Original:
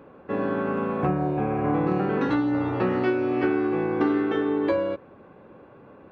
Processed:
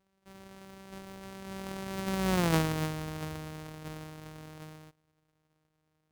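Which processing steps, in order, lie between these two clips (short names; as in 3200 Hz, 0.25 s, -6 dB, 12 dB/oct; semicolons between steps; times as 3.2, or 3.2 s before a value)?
sample sorter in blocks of 256 samples; Doppler pass-by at 2.44, 37 m/s, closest 4.6 m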